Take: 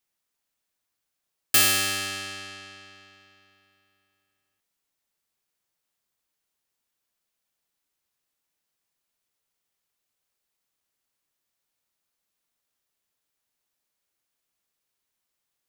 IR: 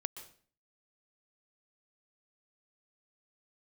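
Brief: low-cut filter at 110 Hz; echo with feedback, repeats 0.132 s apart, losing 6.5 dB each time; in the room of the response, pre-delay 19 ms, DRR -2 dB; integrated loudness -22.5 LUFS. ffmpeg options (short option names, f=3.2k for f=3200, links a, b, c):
-filter_complex "[0:a]highpass=110,aecho=1:1:132|264|396|528|660|792:0.473|0.222|0.105|0.0491|0.0231|0.0109,asplit=2[a][b];[1:a]atrim=start_sample=2205,adelay=19[c];[b][c]afir=irnorm=-1:irlink=0,volume=3dB[d];[a][d]amix=inputs=2:normalize=0,volume=-5.5dB"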